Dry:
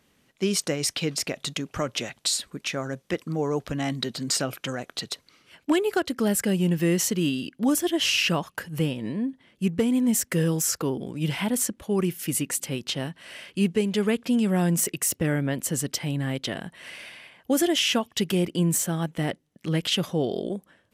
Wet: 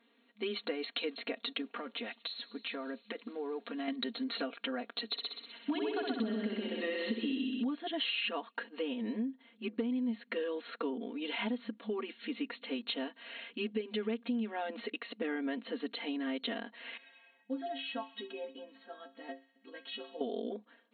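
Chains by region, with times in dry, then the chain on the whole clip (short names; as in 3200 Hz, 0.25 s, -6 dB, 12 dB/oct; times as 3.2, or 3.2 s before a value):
1.61–3.88 companded quantiser 6-bit + thin delay 76 ms, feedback 84%, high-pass 3900 Hz, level -24 dB + compressor 10:1, threshold -29 dBFS
5.09–7.63 tone controls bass +10 dB, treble +9 dB + multi-head echo 63 ms, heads first and second, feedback 51%, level -6 dB
16.97–20.21 air absorption 120 m + metallic resonator 80 Hz, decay 0.45 s, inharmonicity 0.03 + thin delay 64 ms, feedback 72%, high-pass 1500 Hz, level -16.5 dB
whole clip: FFT band-pass 210–4300 Hz; comb 4.3 ms, depth 92%; compressor 5:1, threshold -26 dBFS; gain -6.5 dB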